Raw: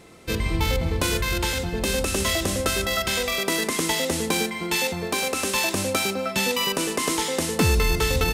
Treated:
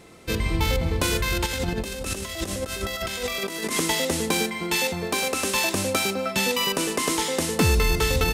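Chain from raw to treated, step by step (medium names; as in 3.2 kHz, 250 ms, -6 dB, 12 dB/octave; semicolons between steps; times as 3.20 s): 1.46–3.79 s: compressor with a negative ratio -28 dBFS, ratio -0.5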